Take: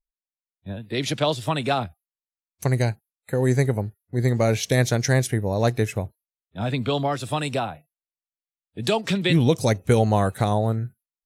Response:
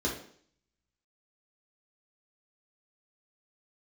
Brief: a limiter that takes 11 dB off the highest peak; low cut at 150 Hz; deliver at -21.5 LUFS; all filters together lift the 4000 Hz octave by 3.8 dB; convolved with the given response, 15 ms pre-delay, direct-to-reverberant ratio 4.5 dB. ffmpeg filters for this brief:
-filter_complex "[0:a]highpass=150,equalizer=f=4k:t=o:g=4.5,alimiter=limit=-15.5dB:level=0:latency=1,asplit=2[a][b];[1:a]atrim=start_sample=2205,adelay=15[c];[b][c]afir=irnorm=-1:irlink=0,volume=-12dB[d];[a][d]amix=inputs=2:normalize=0,volume=4dB"

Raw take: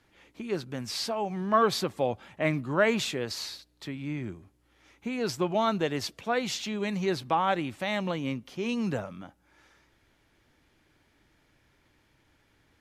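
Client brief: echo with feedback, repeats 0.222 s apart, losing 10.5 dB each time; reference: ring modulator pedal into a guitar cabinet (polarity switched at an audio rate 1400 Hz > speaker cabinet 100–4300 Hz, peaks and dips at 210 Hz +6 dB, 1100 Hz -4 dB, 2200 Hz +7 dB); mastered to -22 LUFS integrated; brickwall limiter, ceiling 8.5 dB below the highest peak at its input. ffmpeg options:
-af "alimiter=limit=-19.5dB:level=0:latency=1,aecho=1:1:222|444|666:0.299|0.0896|0.0269,aeval=exprs='val(0)*sgn(sin(2*PI*1400*n/s))':c=same,highpass=100,equalizer=f=210:t=q:w=4:g=6,equalizer=f=1.1k:t=q:w=4:g=-4,equalizer=f=2.2k:t=q:w=4:g=7,lowpass=f=4.3k:w=0.5412,lowpass=f=4.3k:w=1.3066,volume=7.5dB"

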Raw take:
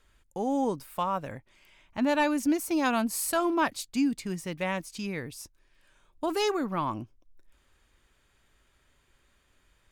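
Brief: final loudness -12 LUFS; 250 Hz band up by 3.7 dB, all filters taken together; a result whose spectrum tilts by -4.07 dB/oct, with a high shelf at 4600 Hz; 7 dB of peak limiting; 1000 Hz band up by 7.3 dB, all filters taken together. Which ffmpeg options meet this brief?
-af "equalizer=f=250:t=o:g=4,equalizer=f=1k:t=o:g=8,highshelf=f=4.6k:g=8.5,volume=15.5dB,alimiter=limit=-2dB:level=0:latency=1"

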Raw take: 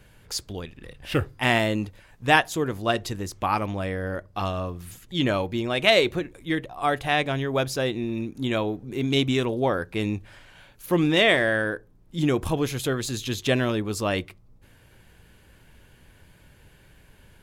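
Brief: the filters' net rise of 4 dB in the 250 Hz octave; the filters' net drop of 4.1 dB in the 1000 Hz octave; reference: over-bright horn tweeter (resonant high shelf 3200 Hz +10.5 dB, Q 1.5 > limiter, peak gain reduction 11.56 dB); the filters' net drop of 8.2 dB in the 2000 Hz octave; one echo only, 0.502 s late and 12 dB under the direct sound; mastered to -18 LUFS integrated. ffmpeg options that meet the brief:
-af "equalizer=f=250:t=o:g=5.5,equalizer=f=1k:t=o:g=-4,equalizer=f=2k:t=o:g=-7.5,highshelf=f=3.2k:t=q:w=1.5:g=10.5,aecho=1:1:502:0.251,volume=8dB,alimiter=limit=-6.5dB:level=0:latency=1"

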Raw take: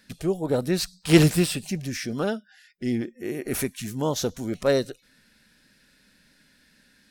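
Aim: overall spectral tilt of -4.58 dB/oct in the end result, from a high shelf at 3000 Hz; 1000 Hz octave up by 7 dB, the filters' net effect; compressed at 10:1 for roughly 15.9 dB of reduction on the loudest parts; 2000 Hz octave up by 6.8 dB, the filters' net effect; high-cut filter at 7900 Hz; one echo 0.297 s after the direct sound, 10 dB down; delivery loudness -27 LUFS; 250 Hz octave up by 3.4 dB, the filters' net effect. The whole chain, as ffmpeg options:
-af "lowpass=7.9k,equalizer=f=250:t=o:g=4.5,equalizer=f=1k:t=o:g=7,equalizer=f=2k:t=o:g=4.5,highshelf=f=3k:g=5,acompressor=threshold=-23dB:ratio=10,aecho=1:1:297:0.316,volume=2dB"

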